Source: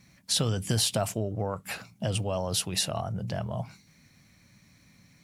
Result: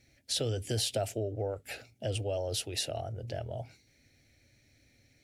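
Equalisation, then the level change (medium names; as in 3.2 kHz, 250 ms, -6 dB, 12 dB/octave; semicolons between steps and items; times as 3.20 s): treble shelf 4 kHz -8.5 dB; static phaser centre 440 Hz, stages 4; 0.0 dB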